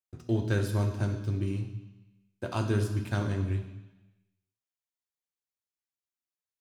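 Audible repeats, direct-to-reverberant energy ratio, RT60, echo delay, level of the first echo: none, 3.5 dB, 1.0 s, none, none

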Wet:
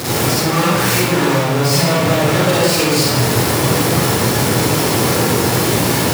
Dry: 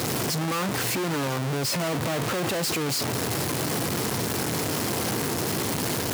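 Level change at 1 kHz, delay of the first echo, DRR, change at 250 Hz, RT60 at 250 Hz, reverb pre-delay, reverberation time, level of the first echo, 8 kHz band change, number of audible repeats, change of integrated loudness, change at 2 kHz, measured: +12.5 dB, none, -8.5 dB, +12.0 dB, 1.4 s, 39 ms, 1.2 s, none, +10.5 dB, none, +12.0 dB, +12.0 dB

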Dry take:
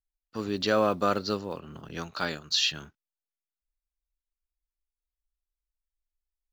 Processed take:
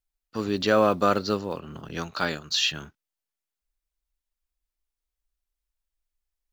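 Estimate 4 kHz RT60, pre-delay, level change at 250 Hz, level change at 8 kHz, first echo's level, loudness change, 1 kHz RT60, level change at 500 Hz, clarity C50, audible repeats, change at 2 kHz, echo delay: none, none, +4.0 dB, n/a, none, +3.0 dB, none, +4.0 dB, none, none, +3.5 dB, none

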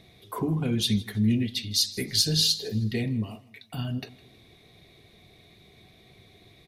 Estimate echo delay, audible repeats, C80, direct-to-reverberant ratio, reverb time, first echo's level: 0.159 s, 2, none, none, none, -21.0 dB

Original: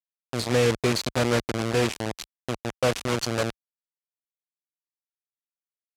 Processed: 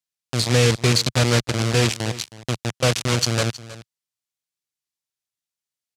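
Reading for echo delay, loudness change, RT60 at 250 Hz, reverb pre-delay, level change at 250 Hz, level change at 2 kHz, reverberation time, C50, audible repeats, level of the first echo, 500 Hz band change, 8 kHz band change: 0.317 s, +5.5 dB, none, none, +3.0 dB, +5.0 dB, none, none, 1, -17.0 dB, +1.5 dB, +9.0 dB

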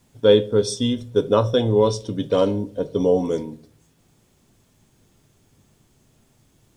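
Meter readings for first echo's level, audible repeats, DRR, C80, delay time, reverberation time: none, none, 11.5 dB, 24.0 dB, none, 0.45 s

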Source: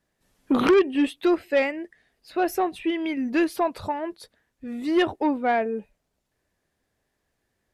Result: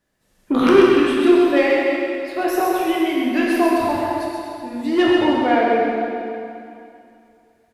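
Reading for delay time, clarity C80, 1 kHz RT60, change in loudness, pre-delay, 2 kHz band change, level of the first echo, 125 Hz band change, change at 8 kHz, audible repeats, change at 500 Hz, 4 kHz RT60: 0.13 s, -2.0 dB, 2.6 s, +6.5 dB, 6 ms, +7.5 dB, -4.5 dB, +7.5 dB, +7.0 dB, 1, +7.5 dB, 2.4 s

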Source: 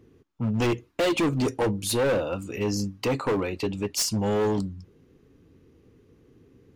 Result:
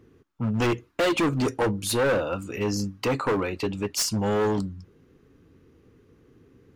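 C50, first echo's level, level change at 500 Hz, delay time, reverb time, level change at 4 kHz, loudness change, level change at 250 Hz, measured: none, none, +0.5 dB, none, none, +0.5 dB, +0.5 dB, 0.0 dB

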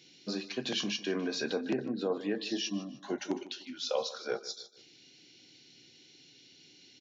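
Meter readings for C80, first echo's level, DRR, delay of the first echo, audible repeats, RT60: none, -17.0 dB, none, 0.152 s, 3, none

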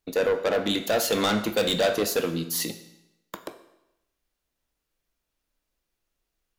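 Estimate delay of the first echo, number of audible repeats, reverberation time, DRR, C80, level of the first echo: none, none, 0.90 s, 9.0 dB, 14.0 dB, none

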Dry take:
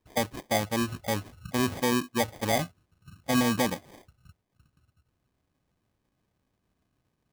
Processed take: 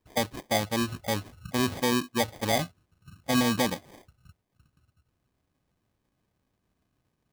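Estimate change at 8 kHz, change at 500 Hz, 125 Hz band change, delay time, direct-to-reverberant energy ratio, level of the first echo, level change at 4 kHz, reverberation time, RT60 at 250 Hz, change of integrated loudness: +0.5 dB, 0.0 dB, 0.0 dB, none, none, none, +2.5 dB, none, none, +0.5 dB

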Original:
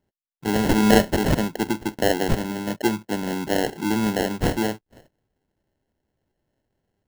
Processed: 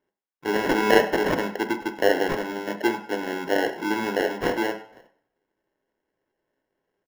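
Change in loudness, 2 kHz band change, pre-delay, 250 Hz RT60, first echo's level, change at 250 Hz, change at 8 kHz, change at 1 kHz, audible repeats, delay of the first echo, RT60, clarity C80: -1.5 dB, +3.0 dB, 3 ms, 0.50 s, -18.0 dB, -5.5 dB, -8.0 dB, +0.5 dB, 1, 98 ms, 0.60 s, 14.0 dB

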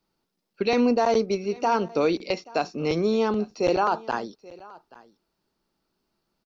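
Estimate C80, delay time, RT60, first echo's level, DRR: none, 0.831 s, none, -22.0 dB, none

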